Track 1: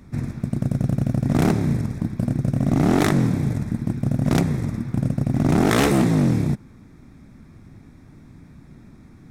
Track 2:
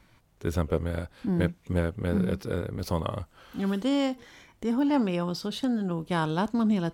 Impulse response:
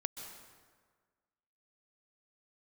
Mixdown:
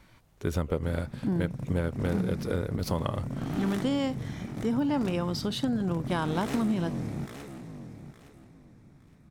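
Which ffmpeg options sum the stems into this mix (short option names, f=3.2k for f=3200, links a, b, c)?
-filter_complex "[0:a]asoftclip=type=hard:threshold=-17dB,adelay=700,volume=-12dB,asplit=2[a][b];[b]volume=-11dB[c];[1:a]volume=2dB[d];[c]aecho=0:1:864|1728|2592|3456:1|0.25|0.0625|0.0156[e];[a][d][e]amix=inputs=3:normalize=0,acompressor=threshold=-24dB:ratio=5"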